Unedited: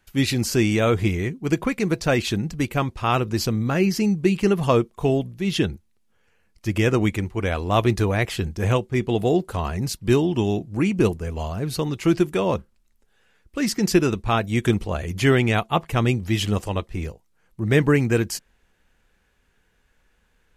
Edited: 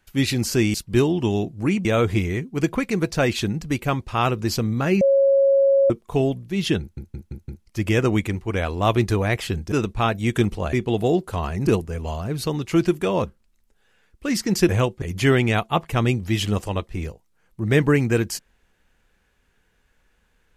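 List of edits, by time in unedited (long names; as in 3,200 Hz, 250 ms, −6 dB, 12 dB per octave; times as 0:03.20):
0:03.90–0:04.79: beep over 549 Hz −13 dBFS
0:05.69: stutter in place 0.17 s, 5 plays
0:08.61–0:08.94: swap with 0:14.01–0:15.02
0:09.88–0:10.99: move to 0:00.74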